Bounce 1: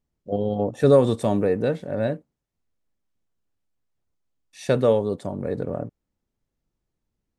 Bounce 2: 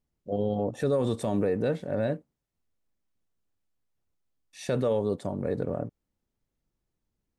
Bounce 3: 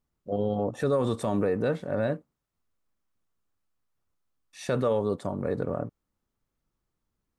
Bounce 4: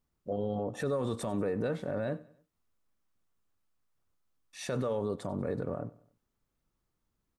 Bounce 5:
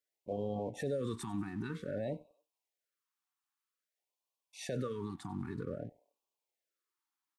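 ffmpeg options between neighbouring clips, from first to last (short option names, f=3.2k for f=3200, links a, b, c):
-af "alimiter=limit=-15.5dB:level=0:latency=1:release=48,volume=-2dB"
-af "equalizer=f=1.2k:w=2:g=7.5"
-af "alimiter=limit=-23.5dB:level=0:latency=1:release=91,aecho=1:1:95|190|285:0.0944|0.0415|0.0183"
-filter_complex "[0:a]acrossover=split=440|2600[a][b][c];[a]aeval=exprs='sgn(val(0))*max(abs(val(0))-0.00133,0)':c=same[d];[d][b][c]amix=inputs=3:normalize=0,afftfilt=real='re*(1-between(b*sr/1024,490*pow(1700/490,0.5+0.5*sin(2*PI*0.52*pts/sr))/1.41,490*pow(1700/490,0.5+0.5*sin(2*PI*0.52*pts/sr))*1.41))':imag='im*(1-between(b*sr/1024,490*pow(1700/490,0.5+0.5*sin(2*PI*0.52*pts/sr))/1.41,490*pow(1700/490,0.5+0.5*sin(2*PI*0.52*pts/sr))*1.41))':win_size=1024:overlap=0.75,volume=-3.5dB"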